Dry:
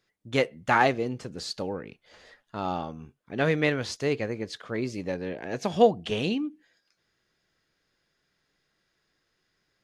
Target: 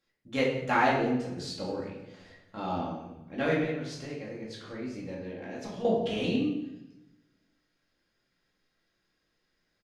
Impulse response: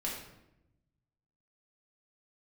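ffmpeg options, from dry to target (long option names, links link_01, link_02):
-filter_complex "[0:a]asettb=1/sr,asplit=3[link_01][link_02][link_03];[link_01]atrim=end=3.624[link_04];[link_02]atrim=start=3.62:end=5.85,asetpts=PTS-STARTPTS,afade=type=in:duration=0.004:curve=qsin,afade=type=out:start_time=2.226:duration=0.004:curve=qsin,acompressor=threshold=-34dB:ratio=6[link_05];[link_03]atrim=start=5.846[link_06];[link_04][link_05]acrossfade=duration=0.004:curve1=hsin:curve2=qsin[link_07];[link_07][link_06]acrossfade=duration=0.004:curve1=qsin:curve2=hsin,aecho=1:1:174|348|522:0.126|0.0403|0.0129[link_08];[1:a]atrim=start_sample=2205,asetrate=48510,aresample=44100[link_09];[link_08][link_09]afir=irnorm=-1:irlink=0,volume=-4.5dB"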